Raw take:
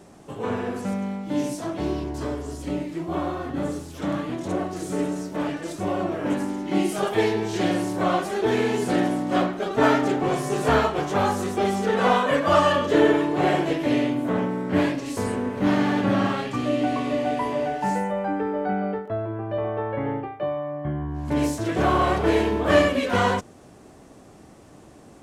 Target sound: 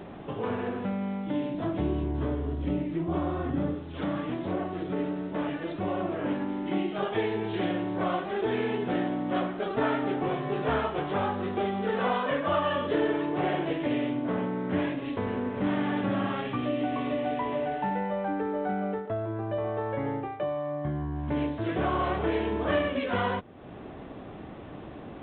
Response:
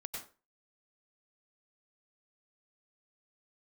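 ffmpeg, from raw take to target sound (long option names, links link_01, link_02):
-filter_complex "[0:a]asettb=1/sr,asplit=3[link_01][link_02][link_03];[link_01]atrim=end=1.544[link_04];[link_02]atrim=start=1.54:end=3.75,asetpts=PTS-STARTPTS,afade=type=in:duration=0.004:curve=qsin,afade=type=out:start_time=2.206:duration=0.004:curve=qsin,lowshelf=frequency=300:gain=9[link_05];[link_03]atrim=start=3.746[link_06];[link_04][link_05]acrossfade=duration=0.004:curve1=hsin:curve2=qsin[link_07];[link_07][link_06]acrossfade=duration=0.004:curve1=qsin:curve2=hsin,acompressor=threshold=-43dB:ratio=2,volume=6.5dB" -ar 8000 -c:a adpcm_g726 -b:a 40k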